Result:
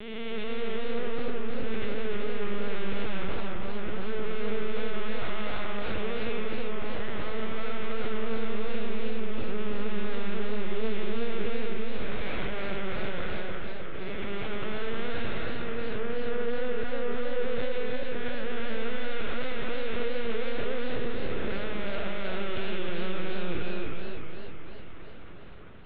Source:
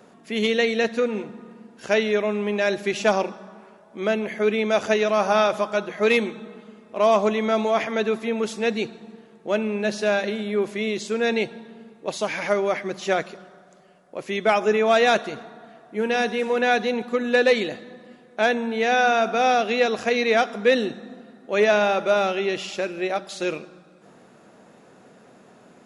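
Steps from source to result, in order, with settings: time blur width 0.442 s; 15.97–17.12 steep low-pass 1700 Hz 96 dB/oct; sample leveller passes 3; compressor 6:1, threshold -22 dBFS, peak gain reduction 7 dB; soft clip -32 dBFS, distortion -9 dB; Butterworth band-stop 720 Hz, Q 2.1; LPC vocoder at 8 kHz pitch kept; reverb RT60 1.0 s, pre-delay 30 ms, DRR 9.5 dB; warbling echo 0.313 s, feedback 60%, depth 124 cents, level -5 dB

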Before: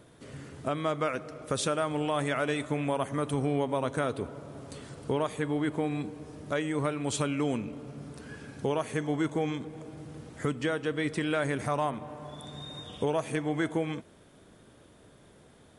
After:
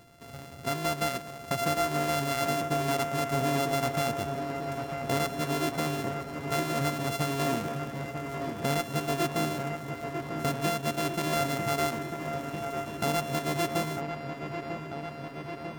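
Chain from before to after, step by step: sample sorter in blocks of 64 samples; dark delay 0.946 s, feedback 76%, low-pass 2700 Hz, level -7 dB

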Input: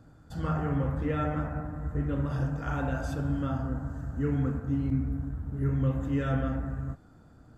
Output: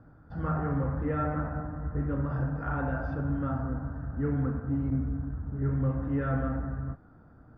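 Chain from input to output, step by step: Chebyshev low-pass 5300 Hz, order 5; soft clip -18.5 dBFS, distortion -24 dB; resonant high shelf 2300 Hz -13.5 dB, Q 1.5

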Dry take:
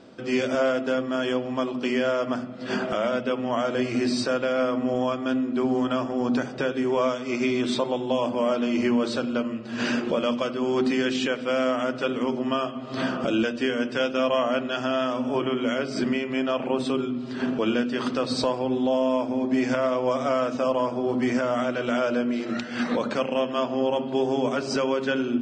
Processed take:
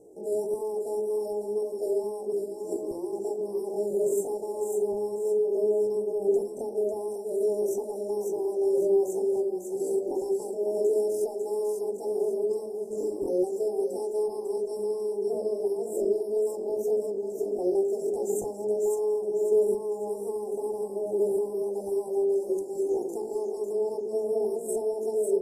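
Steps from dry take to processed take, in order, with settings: inverse Chebyshev band-stop 790–2200 Hz, stop band 60 dB; high shelf 5200 Hz -5.5 dB; notches 50/100/150/200/250/300/350/400/450 Hz; comb 4.2 ms, depth 33%; pitch shift +8.5 st; on a send: thinning echo 0.548 s, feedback 40%, high-pass 1100 Hz, level -3.5 dB

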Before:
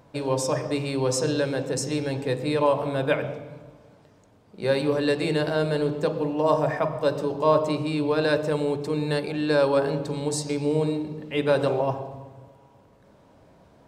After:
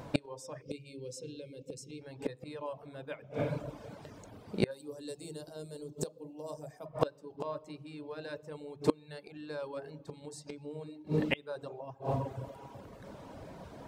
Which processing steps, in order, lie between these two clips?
0.62–2.02 spectral gain 580–2100 Hz -20 dB; flipped gate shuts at -21 dBFS, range -27 dB; reverb removal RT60 0.69 s; 4.71–6.86 EQ curve 470 Hz 0 dB, 2000 Hz -12 dB, 7400 Hz +14 dB; gain +8.5 dB

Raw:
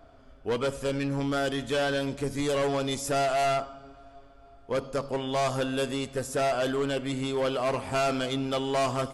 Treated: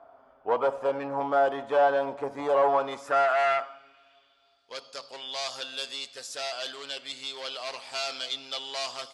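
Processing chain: dynamic EQ 680 Hz, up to +6 dB, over -41 dBFS, Q 1; band-pass sweep 880 Hz -> 4400 Hz, 2.64–4.68; gain +8 dB

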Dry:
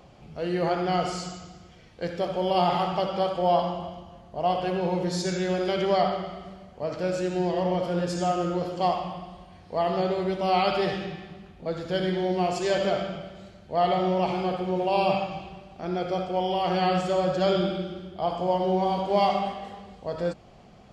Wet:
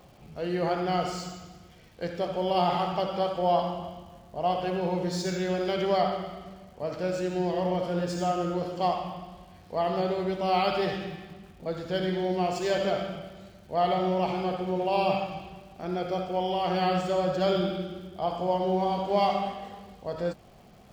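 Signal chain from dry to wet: median filter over 3 samples; crackle 450/s -50 dBFS; gain -2 dB

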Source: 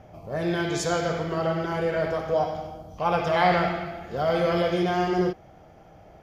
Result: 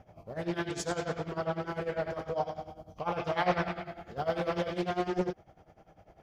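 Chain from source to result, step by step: tremolo 10 Hz, depth 84%; Doppler distortion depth 0.49 ms; gain -4.5 dB

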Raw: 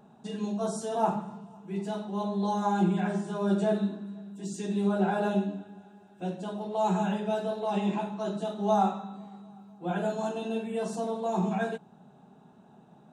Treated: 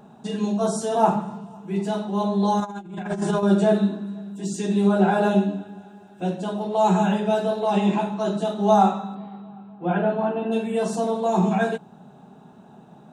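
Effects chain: 2.6–3.43 negative-ratio compressor -34 dBFS, ratio -0.5; 9.14–10.51 LPF 4000 Hz -> 2300 Hz 24 dB/oct; gain +8 dB

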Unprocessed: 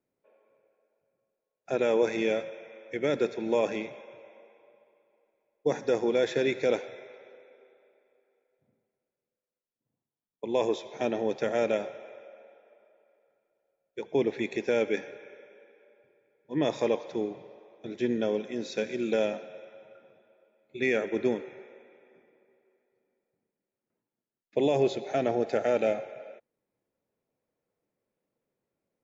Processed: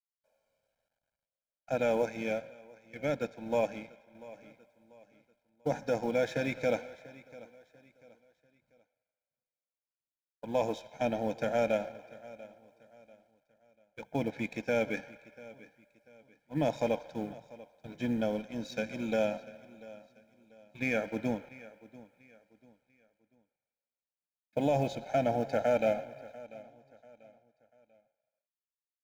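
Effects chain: G.711 law mismatch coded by A; low shelf 130 Hz +6 dB; comb 1.3 ms, depth 90%; dynamic EQ 330 Hz, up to +5 dB, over -41 dBFS, Q 1.1; feedback echo 0.691 s, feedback 35%, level -19.5 dB; 2.02–4.15 upward expander 1.5:1, over -32 dBFS; gain -5 dB

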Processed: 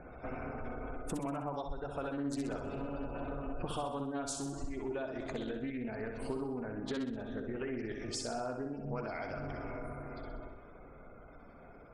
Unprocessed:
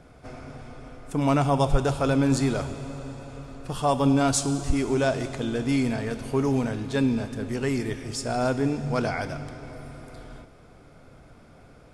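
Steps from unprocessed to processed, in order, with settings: Doppler pass-by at 4.2, 6 m/s, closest 6.8 m; spectral gate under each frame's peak -25 dB strong; bell 120 Hz -9 dB 1.3 oct; compressor 20:1, threshold -50 dBFS, peak gain reduction 32 dB; flutter echo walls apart 10.9 m, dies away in 0.67 s; Doppler distortion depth 0.22 ms; gain +14 dB

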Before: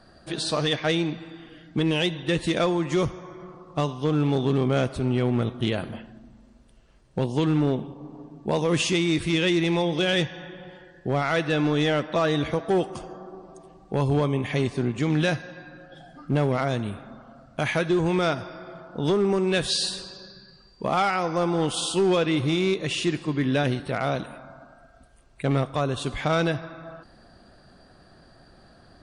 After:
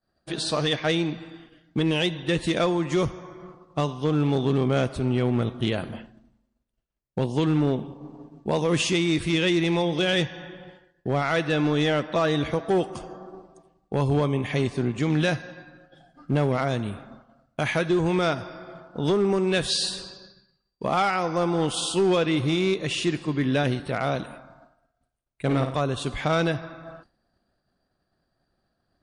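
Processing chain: 24.41–25.75 flutter echo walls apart 9.2 m, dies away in 0.46 s; expander -39 dBFS

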